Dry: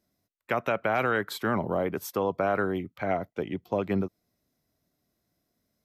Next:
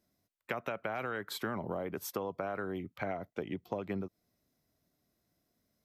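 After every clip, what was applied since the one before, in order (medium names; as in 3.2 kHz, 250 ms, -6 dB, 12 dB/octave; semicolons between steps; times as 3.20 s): compression 10:1, threshold -31 dBFS, peak gain reduction 10.5 dB; trim -1.5 dB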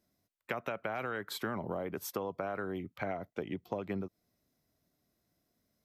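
no audible change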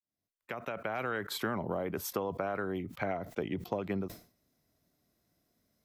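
fade-in on the opening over 1.09 s; decay stretcher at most 140 dB/s; trim +2.5 dB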